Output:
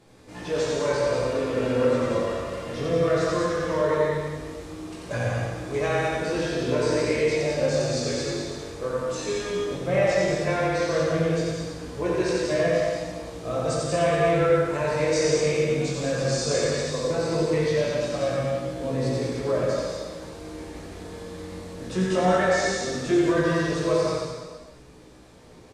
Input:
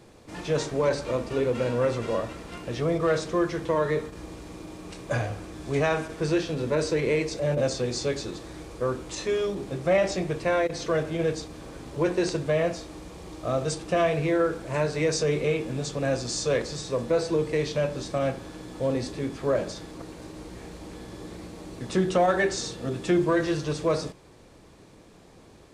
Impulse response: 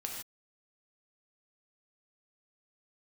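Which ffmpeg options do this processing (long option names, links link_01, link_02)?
-filter_complex "[0:a]aecho=1:1:90|189|297.9|417.7|549.5:0.631|0.398|0.251|0.158|0.1,flanger=delay=16:depth=6:speed=0.16[link_01];[1:a]atrim=start_sample=2205,asetrate=29106,aresample=44100[link_02];[link_01][link_02]afir=irnorm=-1:irlink=0"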